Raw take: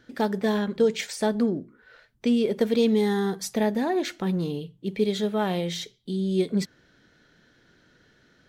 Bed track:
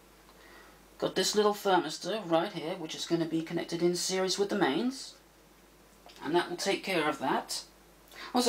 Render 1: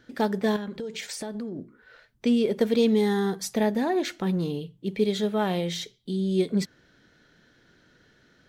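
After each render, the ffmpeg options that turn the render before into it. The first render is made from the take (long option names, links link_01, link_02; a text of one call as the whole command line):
ffmpeg -i in.wav -filter_complex "[0:a]asettb=1/sr,asplit=3[link_01][link_02][link_03];[link_01]atrim=end=0.564[link_04];[link_02]atrim=start=0.56:end=1.59,asetpts=PTS-STARTPTS,afade=type=in:duration=0.004:curve=qsin,afade=type=out:start_time=1.026:duration=0.004:curve=qsin,acompressor=threshold=-30dB:ratio=12:attack=3.2:release=140:knee=1:detection=peak[link_05];[link_03]atrim=start=1.586[link_06];[link_04][link_05]acrossfade=duration=0.004:curve1=hsin:curve2=qsin[link_07];[link_07][link_06]acrossfade=duration=0.004:curve1=qsin:curve2=hsin" out.wav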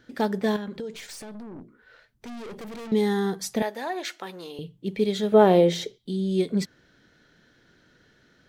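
ffmpeg -i in.wav -filter_complex "[0:a]asettb=1/sr,asplit=3[link_01][link_02][link_03];[link_01]atrim=end=0.934[link_04];[link_02]atrim=start=0.93:end=2.92,asetpts=PTS-STARTPTS,afade=type=in:duration=0.004:curve=qsin,afade=type=out:start_time=1.986:duration=0.004:curve=qsin,aeval=exprs='(tanh(70.8*val(0)+0.4)-tanh(0.4))/70.8':channel_layout=same[link_05];[link_03]atrim=start=2.916[link_06];[link_04][link_05]acrossfade=duration=0.004:curve1=hsin:curve2=qsin[link_07];[link_07][link_06]acrossfade=duration=0.004:curve1=qsin:curve2=hsin,asettb=1/sr,asplit=3[link_08][link_09][link_10];[link_08]atrim=end=3.624[link_11];[link_09]atrim=start=3.62:end=4.59,asetpts=PTS-STARTPTS,afade=type=in:duration=0.004:curve=qsin,afade=type=out:start_time=0.966:duration=0.004:curve=qsin,highpass=610[link_12];[link_10]atrim=start=4.586[link_13];[link_11][link_12]acrossfade=duration=0.004:curve1=hsin:curve2=qsin[link_14];[link_14][link_13]acrossfade=duration=0.004:curve1=qsin:curve2=hsin,asettb=1/sr,asplit=3[link_15][link_16][link_17];[link_15]atrim=end=5.324[link_18];[link_16]atrim=start=5.32:end=5.98,asetpts=PTS-STARTPTS,afade=type=in:duration=0.004:curve=qsin,afade=type=out:start_time=0.656:duration=0.004:curve=qsin,equalizer=frequency=460:width=0.63:gain=13.5[link_19];[link_17]atrim=start=5.976[link_20];[link_18][link_19]acrossfade=duration=0.004:curve1=hsin:curve2=qsin[link_21];[link_21][link_20]acrossfade=duration=0.004:curve1=qsin:curve2=hsin" out.wav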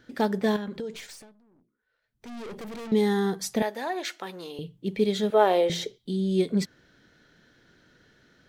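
ffmpeg -i in.wav -filter_complex "[0:a]asettb=1/sr,asplit=3[link_01][link_02][link_03];[link_01]atrim=end=5.304[link_04];[link_02]atrim=start=5.3:end=5.7,asetpts=PTS-STARTPTS,afade=type=in:duration=0.004:curve=qsin,afade=type=out:start_time=0.396:duration=0.004:curve=qsin,highpass=550[link_05];[link_03]atrim=start=5.696[link_06];[link_04][link_05]acrossfade=duration=0.004:curve1=hsin:curve2=qsin[link_07];[link_07][link_06]acrossfade=duration=0.004:curve1=qsin:curve2=hsin,asplit=3[link_08][link_09][link_10];[link_08]atrim=end=1.35,asetpts=PTS-STARTPTS,afade=type=out:start_time=0.97:duration=0.38:silence=0.0749894[link_11];[link_09]atrim=start=1.35:end=2.02,asetpts=PTS-STARTPTS,volume=-22.5dB[link_12];[link_10]atrim=start=2.02,asetpts=PTS-STARTPTS,afade=type=in:duration=0.38:silence=0.0749894[link_13];[link_11][link_12][link_13]concat=n=3:v=0:a=1" out.wav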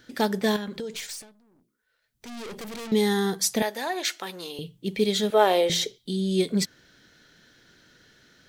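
ffmpeg -i in.wav -af "highshelf=frequency=2600:gain=10.5" out.wav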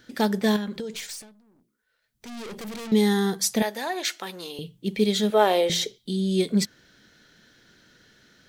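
ffmpeg -i in.wav -af "equalizer=frequency=210:width=7.4:gain=4.5" out.wav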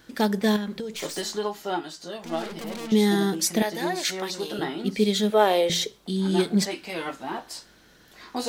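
ffmpeg -i in.wav -i bed.wav -filter_complex "[1:a]volume=-2.5dB[link_01];[0:a][link_01]amix=inputs=2:normalize=0" out.wav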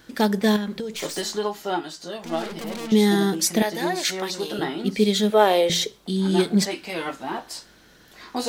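ffmpeg -i in.wav -af "volume=2.5dB" out.wav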